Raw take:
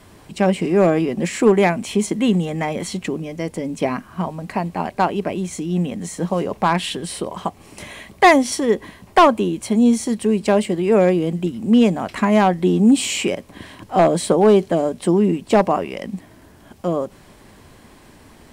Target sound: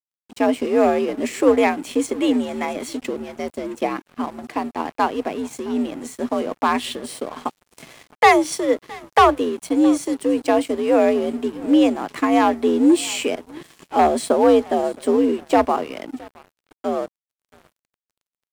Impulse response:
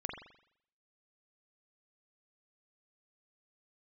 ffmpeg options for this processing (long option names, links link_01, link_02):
-af "aecho=1:1:667:0.0944,afreqshift=67,aeval=exprs='sgn(val(0))*max(abs(val(0))-0.015,0)':channel_layout=same,volume=-1dB"